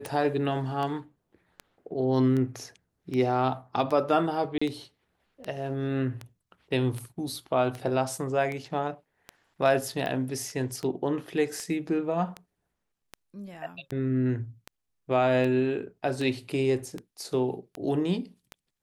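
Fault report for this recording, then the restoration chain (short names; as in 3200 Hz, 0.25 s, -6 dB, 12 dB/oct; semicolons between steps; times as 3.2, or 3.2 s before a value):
tick 78 rpm
4.58–4.62 gap 35 ms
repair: de-click; interpolate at 4.58, 35 ms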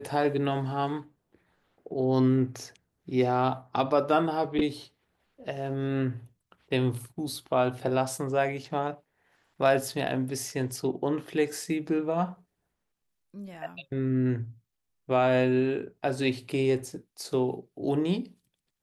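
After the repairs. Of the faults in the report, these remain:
none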